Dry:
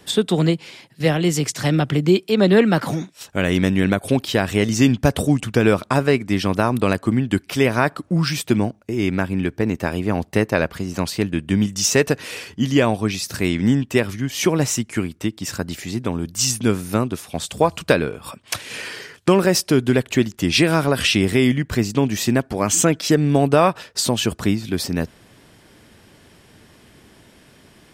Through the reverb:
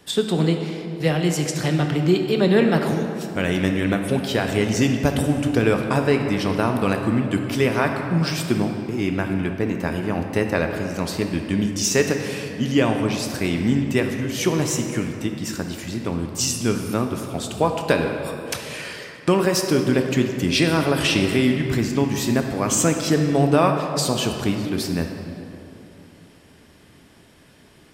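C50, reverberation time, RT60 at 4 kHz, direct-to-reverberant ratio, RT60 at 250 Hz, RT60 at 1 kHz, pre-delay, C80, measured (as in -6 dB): 5.0 dB, 2.9 s, 1.7 s, 3.5 dB, 3.3 s, 2.8 s, 3 ms, 6.0 dB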